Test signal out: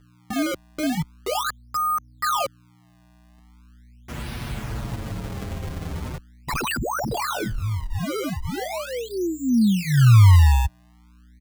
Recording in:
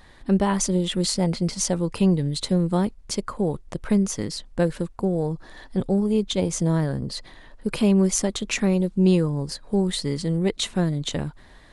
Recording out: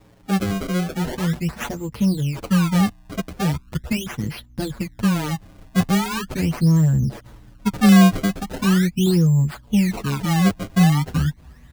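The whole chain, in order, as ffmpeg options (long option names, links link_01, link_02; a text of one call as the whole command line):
ffmpeg -i in.wav -filter_complex "[0:a]highpass=61,asubboost=boost=6.5:cutoff=180,aeval=exprs='val(0)+0.00447*(sin(2*PI*60*n/s)+sin(2*PI*2*60*n/s)/2+sin(2*PI*3*60*n/s)/3+sin(2*PI*4*60*n/s)/4+sin(2*PI*5*60*n/s)/5)':channel_layout=same,acrusher=samples=28:mix=1:aa=0.000001:lfo=1:lforange=44.8:lforate=0.4,asplit=2[link_01][link_02];[link_02]adelay=6.9,afreqshift=-0.39[link_03];[link_01][link_03]amix=inputs=2:normalize=1" out.wav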